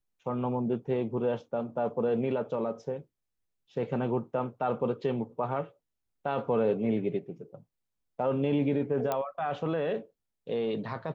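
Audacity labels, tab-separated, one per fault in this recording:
9.120000	9.120000	pop -16 dBFS

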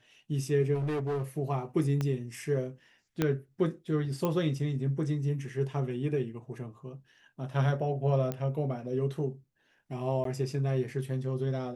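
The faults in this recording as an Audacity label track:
0.740000	1.230000	clipped -28 dBFS
2.010000	2.010000	pop -19 dBFS
3.220000	3.220000	pop -13 dBFS
4.250000	4.250000	pop -17 dBFS
8.320000	8.320000	pop -20 dBFS
10.240000	10.250000	gap

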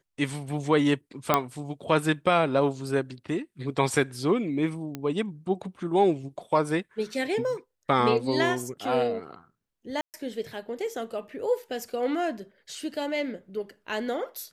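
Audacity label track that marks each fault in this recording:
1.340000	1.340000	pop -6 dBFS
4.950000	4.950000	pop -19 dBFS
10.010000	10.140000	gap 0.128 s

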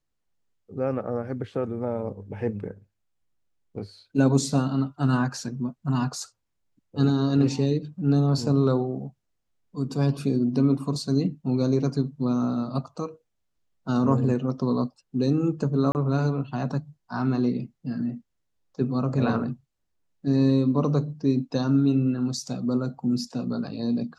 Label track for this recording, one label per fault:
15.920000	15.950000	gap 29 ms

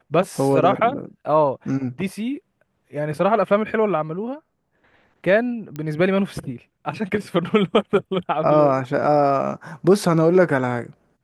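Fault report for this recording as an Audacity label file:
5.760000	5.760000	pop -18 dBFS

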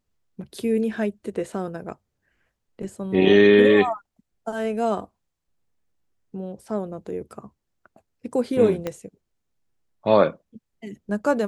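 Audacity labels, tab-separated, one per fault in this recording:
8.870000	8.870000	pop -14 dBFS

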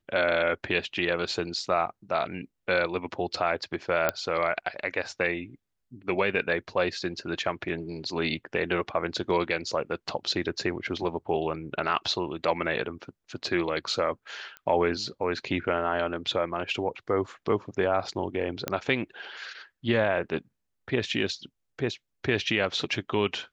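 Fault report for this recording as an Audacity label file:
4.090000	4.090000	pop -9 dBFS
14.570000	14.570000	pop -25 dBFS
18.680000	18.680000	pop -11 dBFS

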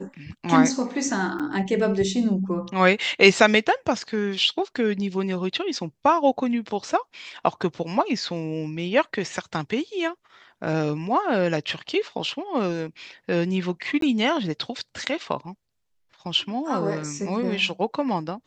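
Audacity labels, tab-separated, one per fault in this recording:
1.390000	1.400000	gap 6.7 ms
14.010000	14.020000	gap 13 ms

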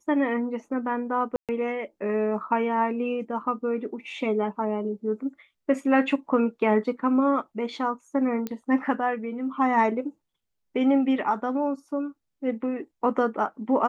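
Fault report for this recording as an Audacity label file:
1.360000	1.490000	gap 0.127 s
8.470000	8.470000	pop -17 dBFS

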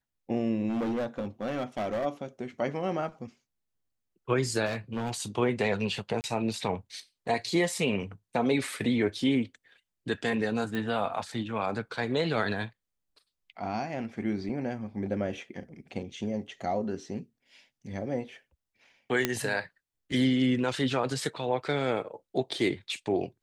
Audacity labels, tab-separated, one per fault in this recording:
0.680000	2.060000	clipped -27 dBFS
4.650000	5.150000	clipped -27 dBFS
6.210000	6.240000	gap 29 ms
10.750000	10.750000	pop -21 dBFS
14.490000	14.490000	gap 3.6 ms
19.250000	19.250000	pop -9 dBFS

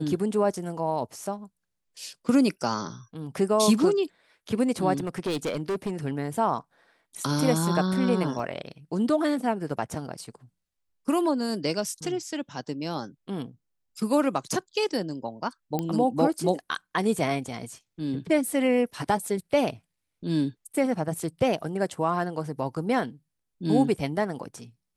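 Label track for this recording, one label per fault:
4.970000	5.910000	clipped -24.5 dBFS
8.390000	8.390000	gap 3.3 ms
15.790000	15.790000	pop -15 dBFS

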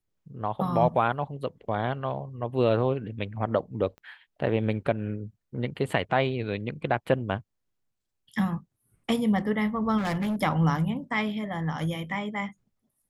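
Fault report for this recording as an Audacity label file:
3.980000	3.980000	pop -35 dBFS
9.970000	10.360000	clipped -25 dBFS

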